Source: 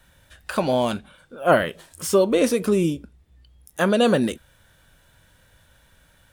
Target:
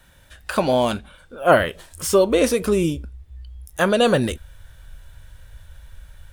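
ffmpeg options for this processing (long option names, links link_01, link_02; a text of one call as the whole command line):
ffmpeg -i in.wav -af "asubboost=boost=10.5:cutoff=69,volume=3dB" out.wav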